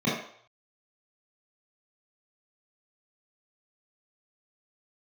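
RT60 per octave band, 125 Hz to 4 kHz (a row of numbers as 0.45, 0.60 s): 0.35, 0.40, 0.60, 0.65, 0.50, 0.60 s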